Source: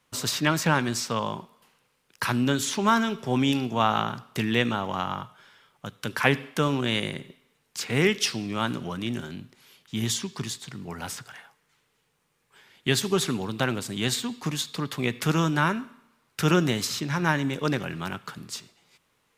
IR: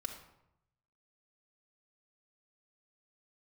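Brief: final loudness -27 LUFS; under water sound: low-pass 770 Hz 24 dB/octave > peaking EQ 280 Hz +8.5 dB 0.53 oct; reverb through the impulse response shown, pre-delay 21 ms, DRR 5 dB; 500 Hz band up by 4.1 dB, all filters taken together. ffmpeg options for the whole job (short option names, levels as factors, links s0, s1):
-filter_complex "[0:a]equalizer=f=500:t=o:g=3.5,asplit=2[s0][s1];[1:a]atrim=start_sample=2205,adelay=21[s2];[s1][s2]afir=irnorm=-1:irlink=0,volume=0.631[s3];[s0][s3]amix=inputs=2:normalize=0,lowpass=f=770:w=0.5412,lowpass=f=770:w=1.3066,equalizer=f=280:t=o:w=0.53:g=8.5,volume=0.596"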